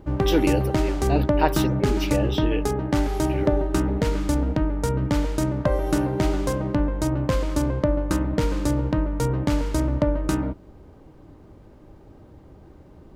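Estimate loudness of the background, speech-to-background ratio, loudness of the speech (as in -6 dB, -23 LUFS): -24.0 LUFS, -3.5 dB, -27.5 LUFS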